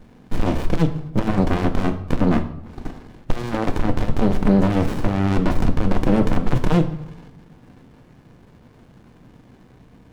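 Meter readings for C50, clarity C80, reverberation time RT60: 12.5 dB, 15.0 dB, 0.75 s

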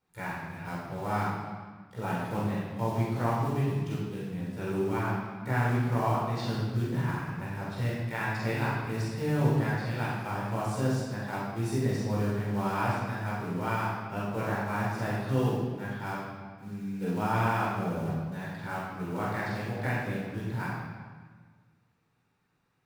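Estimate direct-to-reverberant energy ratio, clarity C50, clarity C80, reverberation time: −8.5 dB, −2.0 dB, 1.5 dB, 1.5 s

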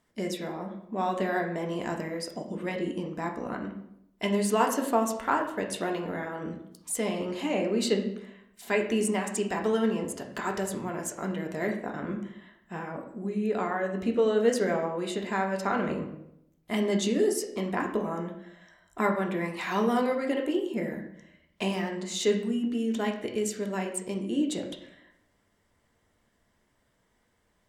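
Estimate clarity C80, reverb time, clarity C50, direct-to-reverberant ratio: 11.0 dB, 0.80 s, 8.0 dB, 1.5 dB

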